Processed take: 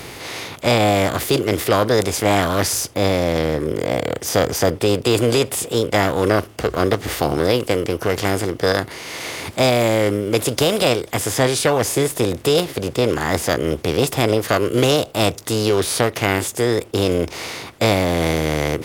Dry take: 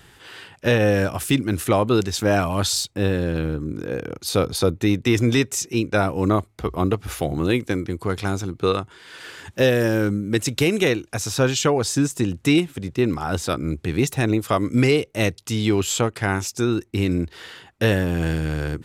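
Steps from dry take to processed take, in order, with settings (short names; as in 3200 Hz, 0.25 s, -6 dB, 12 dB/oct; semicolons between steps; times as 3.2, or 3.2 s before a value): per-bin compression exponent 0.6; formant shift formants +5 st; gain -1 dB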